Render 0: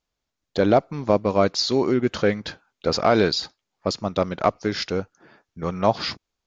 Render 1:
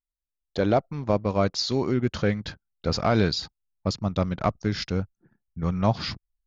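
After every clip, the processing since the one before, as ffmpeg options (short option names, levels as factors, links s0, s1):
-af "asubboost=boost=4.5:cutoff=190,anlmdn=0.0631,volume=0.631"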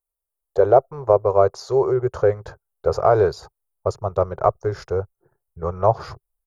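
-af "firequalizer=gain_entry='entry(130,0);entry(240,-24);entry(390,11);entry(650,9);entry(1200,6);entry(2000,-10);entry(3300,-17);entry(5100,-11);entry(9400,11)':delay=0.05:min_phase=1"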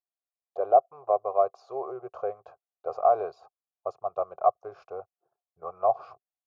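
-filter_complex "[0:a]asplit=3[s0][s1][s2];[s0]bandpass=f=730:t=q:w=8,volume=1[s3];[s1]bandpass=f=1090:t=q:w=8,volume=0.501[s4];[s2]bandpass=f=2440:t=q:w=8,volume=0.355[s5];[s3][s4][s5]amix=inputs=3:normalize=0"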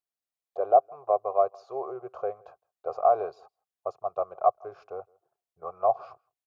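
-filter_complex "[0:a]asplit=2[s0][s1];[s1]adelay=163.3,volume=0.0398,highshelf=f=4000:g=-3.67[s2];[s0][s2]amix=inputs=2:normalize=0"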